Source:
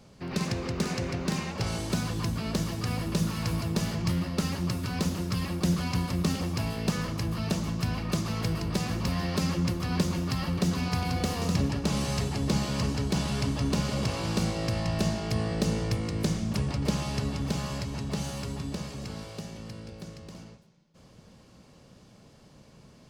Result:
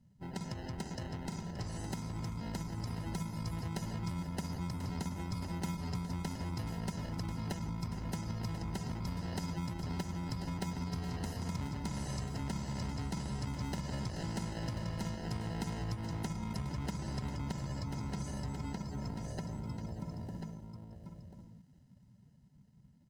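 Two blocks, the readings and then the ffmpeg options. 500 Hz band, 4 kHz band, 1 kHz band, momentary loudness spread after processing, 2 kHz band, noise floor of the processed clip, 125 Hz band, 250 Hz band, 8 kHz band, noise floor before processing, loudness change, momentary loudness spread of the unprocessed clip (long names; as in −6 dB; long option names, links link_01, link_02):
−12.5 dB, −13.0 dB, −8.0 dB, 4 LU, −11.5 dB, −62 dBFS, −8.5 dB, −10.0 dB, −11.0 dB, −55 dBFS, −10.0 dB, 7 LU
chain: -filter_complex "[0:a]highshelf=frequency=9600:gain=5.5,acrossover=split=4000[link_01][link_02];[link_01]acrusher=samples=38:mix=1:aa=0.000001[link_03];[link_03][link_02]amix=inputs=2:normalize=0,afftdn=noise_reduction=17:noise_floor=-44,dynaudnorm=framelen=450:gausssize=13:maxgain=13.5dB,aecho=1:1:1:0.33,asplit=2[link_04][link_05];[link_05]aecho=0:1:1039:0.266[link_06];[link_04][link_06]amix=inputs=2:normalize=0,acompressor=threshold=-29dB:ratio=5,volume=-8dB"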